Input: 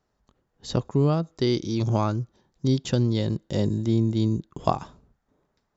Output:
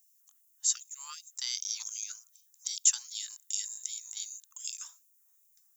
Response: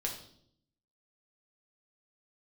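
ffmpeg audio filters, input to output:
-af "aderivative,aexciter=amount=8.7:drive=5.8:freq=6.3k,afftfilt=real='re*gte(b*sr/1024,740*pow(2300/740,0.5+0.5*sin(2*PI*2.6*pts/sr)))':imag='im*gte(b*sr/1024,740*pow(2300/740,0.5+0.5*sin(2*PI*2.6*pts/sr)))':win_size=1024:overlap=0.75,volume=3.5dB"

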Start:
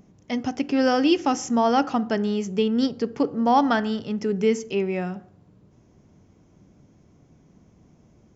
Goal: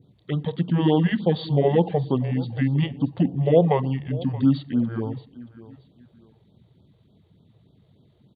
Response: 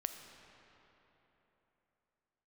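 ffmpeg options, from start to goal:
-filter_complex "[0:a]asetrate=26990,aresample=44100,atempo=1.63392,equalizer=f=1.4k:t=o:w=0.68:g=-10,bandreject=f=4.1k:w=8.8,asplit=2[a][b];[b]aecho=0:1:627|1254:0.119|0.0333[c];[a][c]amix=inputs=2:normalize=0,adynamicequalizer=threshold=0.00398:dfrequency=3100:dqfactor=0.92:tfrequency=3100:tqfactor=0.92:attack=5:release=100:ratio=0.375:range=2.5:mode=cutabove:tftype=bell,highpass=140,afftfilt=real='re*(1-between(b*sr/1024,210*pow(2200/210,0.5+0.5*sin(2*PI*3.4*pts/sr))/1.41,210*pow(2200/210,0.5+0.5*sin(2*PI*3.4*pts/sr))*1.41))':imag='im*(1-between(b*sr/1024,210*pow(2200/210,0.5+0.5*sin(2*PI*3.4*pts/sr))/1.41,210*pow(2200/210,0.5+0.5*sin(2*PI*3.4*pts/sr))*1.41))':win_size=1024:overlap=0.75,volume=3.5dB"

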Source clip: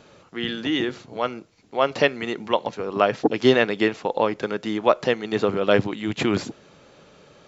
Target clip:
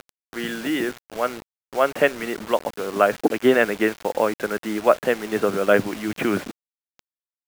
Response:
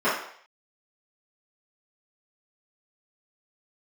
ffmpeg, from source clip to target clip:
-af "highpass=f=110:w=0.5412,highpass=f=110:w=1.3066,equalizer=f=130:t=q:w=4:g=-8,equalizer=f=620:t=q:w=4:g=3,equalizer=f=930:t=q:w=4:g=-3,equalizer=f=1.5k:t=q:w=4:g=6,lowpass=f=2.7k:w=0.5412,lowpass=f=2.7k:w=1.3066,acompressor=mode=upward:threshold=-39dB:ratio=2.5,acrusher=bits=5:mix=0:aa=0.000001"

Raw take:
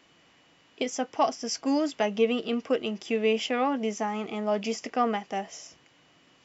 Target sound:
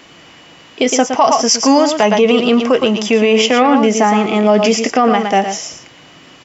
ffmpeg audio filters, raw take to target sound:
-filter_complex "[0:a]asettb=1/sr,asplit=3[a][b][c];[a]atrim=end=1.054[d];[b]atrim=start=1.05:end=3.51,asetpts=PTS-STARTPTS,afade=t=in:d=0.004:c=qsin,afade=t=out:st=2.456:d=0.004:c=qsin,equalizer=f=315:t=o:w=0.33:g=-7,equalizer=f=1k:t=o:w=0.33:g=8,equalizer=f=6.3k:t=o:w=0.33:g=4[e];[c]atrim=start=3.506[f];[d][e]acrossfade=d=0.004:c1=hsin:c2=qsin[g];[g][f]acrossfade=d=0.004:c1=qsin:c2=hsin,aecho=1:1:114:0.376,alimiter=level_in=19.5dB:limit=-1dB:release=50:level=0:latency=1,volume=-1dB"

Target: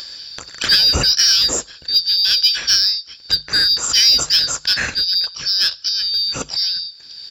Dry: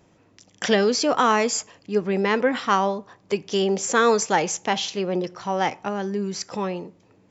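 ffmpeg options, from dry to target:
-filter_complex "[0:a]afftfilt=real='real(if(lt(b,272),68*(eq(floor(b/68),0)*3+eq(floor(b/68),1)*2+eq(floor(b/68),2)*1+eq(floor(b/68),3)*0)+mod(b,68),b),0)':imag='imag(if(lt(b,272),68*(eq(floor(b/68),0)*3+eq(floor(b/68),1)*2+eq(floor(b/68),2)*1+eq(floor(b/68),3)*0)+mod(b,68),b),0)':win_size=2048:overlap=0.75,highpass=42,asplit=2[a][b];[b]asetrate=35002,aresample=44100,atempo=1.25992,volume=-11dB[c];[a][c]amix=inputs=2:normalize=0,equalizer=f=100:t=o:w=0.33:g=-9,equalizer=f=200:t=o:w=0.33:g=-6,equalizer=f=500:t=o:w=0.33:g=6,equalizer=f=1.6k:t=o:w=0.33:g=10,equalizer=f=2.5k:t=o:w=0.33:g=5,equalizer=f=6.3k:t=o:w=0.33:g=-7,asplit=2[d][e];[e]asoftclip=type=tanh:threshold=-18.5dB,volume=-6dB[f];[d][f]amix=inputs=2:normalize=0,acompressor=mode=upward:threshold=-21dB:ratio=2.5,bass=f=250:g=15,treble=f=4k:g=9,bandreject=f=50:t=h:w=6,bandreject=f=100:t=h:w=6,bandreject=f=150:t=h:w=6,volume=-2dB"

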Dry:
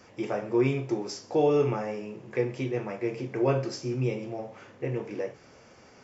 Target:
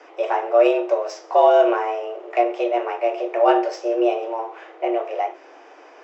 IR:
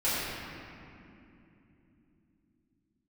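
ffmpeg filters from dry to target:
-af "adynamicsmooth=sensitivity=1.5:basefreq=3.3k,afreqshift=230,volume=9dB"

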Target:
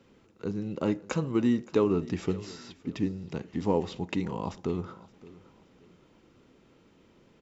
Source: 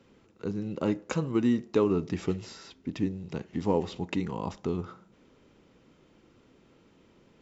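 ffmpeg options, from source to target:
-af "aecho=1:1:570|1140|1710:0.1|0.034|0.0116"

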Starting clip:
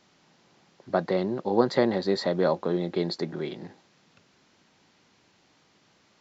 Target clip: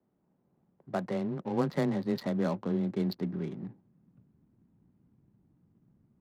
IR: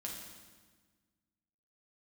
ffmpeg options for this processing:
-af "asubboost=boost=8.5:cutoff=180,afreqshift=16,adynamicsmooth=sensitivity=6:basefreq=520,volume=-7dB"

